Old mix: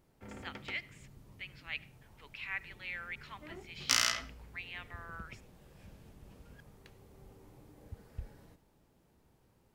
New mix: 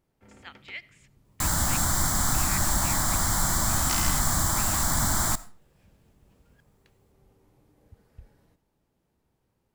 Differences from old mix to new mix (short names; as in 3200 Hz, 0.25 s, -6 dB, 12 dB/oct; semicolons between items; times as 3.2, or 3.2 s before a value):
first sound -5.5 dB; second sound: unmuted